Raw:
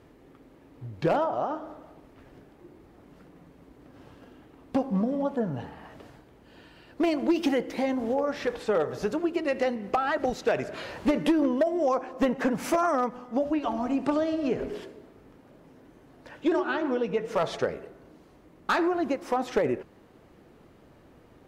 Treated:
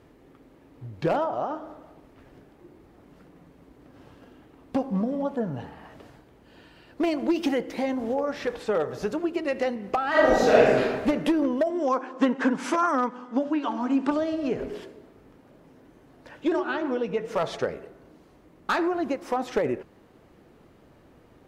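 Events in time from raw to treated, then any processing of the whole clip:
10.09–10.78 reverb throw, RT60 1.4 s, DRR -9 dB
11.7–14.11 speaker cabinet 230–9200 Hz, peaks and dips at 260 Hz +7 dB, 670 Hz -6 dB, 980 Hz +5 dB, 1500 Hz +6 dB, 3300 Hz +4 dB

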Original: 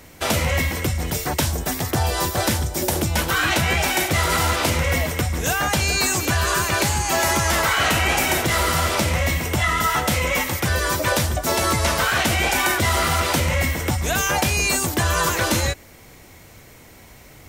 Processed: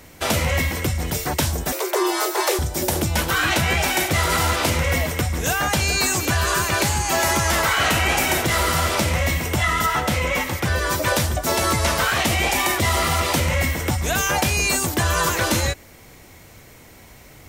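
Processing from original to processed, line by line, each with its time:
1.72–2.59 frequency shift +280 Hz
9.86–10.91 high shelf 5400 Hz -6.5 dB
12.13–13.37 notch 1500 Hz, Q 8.3

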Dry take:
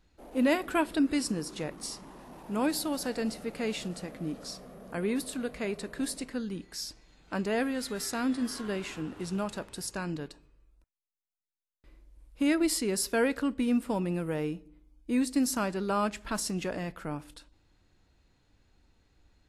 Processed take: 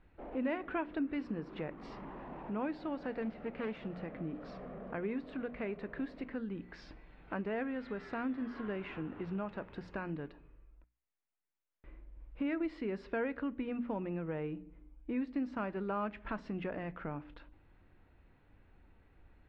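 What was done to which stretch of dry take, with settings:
3.22–3.86 self-modulated delay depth 0.21 ms
whole clip: LPF 2500 Hz 24 dB/oct; notches 60/120/180/240/300 Hz; compressor 2:1, threshold -46 dBFS; gain +3.5 dB

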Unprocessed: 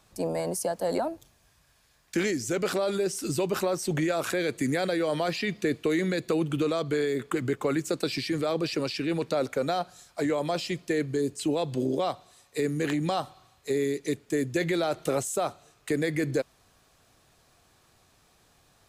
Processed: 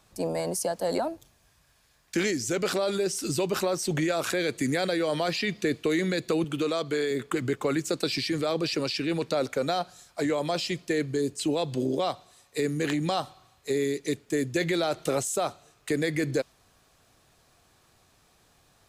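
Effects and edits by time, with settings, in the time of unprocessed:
6.44–7.11 HPF 210 Hz 6 dB/oct
whole clip: dynamic EQ 4700 Hz, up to +4 dB, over -46 dBFS, Q 0.71

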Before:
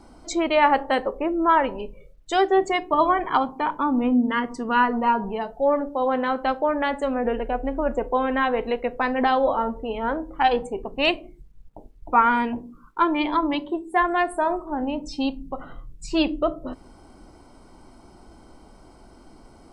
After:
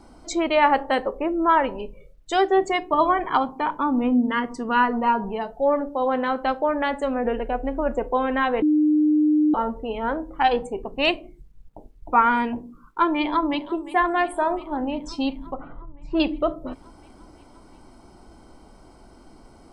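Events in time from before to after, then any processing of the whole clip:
8.62–9.54 bleep 303 Hz -15 dBFS
13.21–13.74 echo throw 0.35 s, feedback 80%, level -15.5 dB
15.54–16.2 LPF 1400 Hz

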